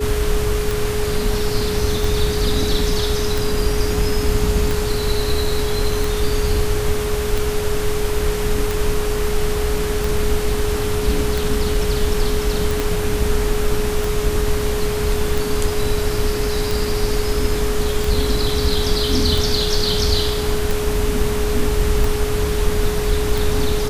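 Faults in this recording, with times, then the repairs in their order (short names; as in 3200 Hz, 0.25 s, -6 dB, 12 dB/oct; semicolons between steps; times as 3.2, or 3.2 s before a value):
tick 45 rpm
tone 420 Hz -22 dBFS
12.8 pop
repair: de-click; notch 420 Hz, Q 30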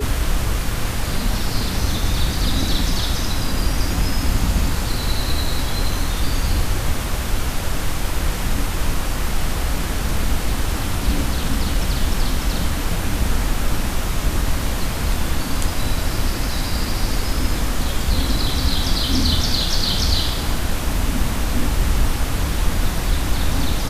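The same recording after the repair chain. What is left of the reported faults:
12.8 pop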